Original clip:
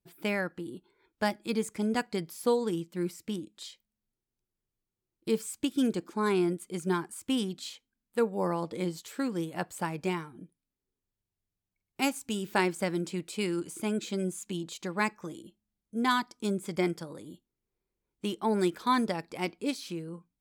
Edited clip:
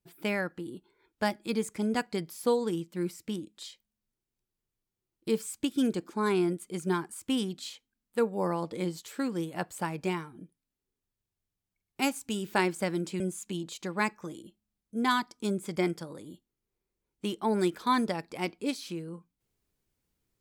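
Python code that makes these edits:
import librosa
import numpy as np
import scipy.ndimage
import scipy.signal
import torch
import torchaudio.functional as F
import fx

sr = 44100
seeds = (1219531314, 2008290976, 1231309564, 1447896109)

y = fx.edit(x, sr, fx.cut(start_s=13.2, length_s=1.0), tone=tone)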